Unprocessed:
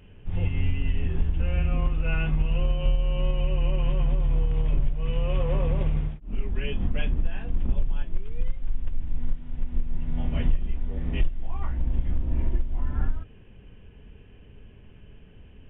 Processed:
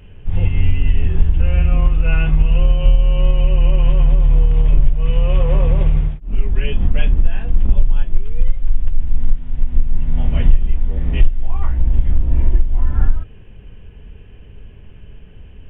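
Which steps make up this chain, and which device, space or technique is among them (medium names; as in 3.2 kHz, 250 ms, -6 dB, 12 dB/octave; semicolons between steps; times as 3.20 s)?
low shelf boost with a cut just above (bass shelf 78 Hz +6 dB; peaking EQ 250 Hz -3 dB 0.66 oct); trim +6.5 dB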